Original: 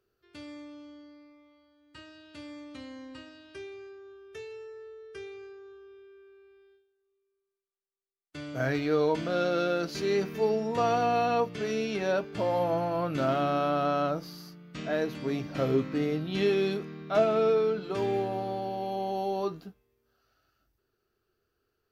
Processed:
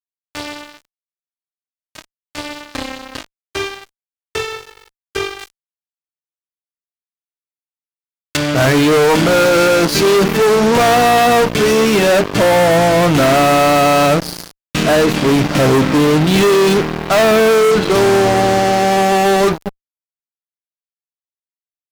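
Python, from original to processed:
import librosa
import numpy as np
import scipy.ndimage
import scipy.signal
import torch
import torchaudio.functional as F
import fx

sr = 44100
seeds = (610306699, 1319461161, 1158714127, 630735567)

y = fx.law_mismatch(x, sr, coded='A')
y = fx.fuzz(y, sr, gain_db=40.0, gate_db=-47.0)
y = fx.high_shelf(y, sr, hz=2200.0, db=10.0, at=(5.39, 8.37))
y = F.gain(torch.from_numpy(y), 4.0).numpy()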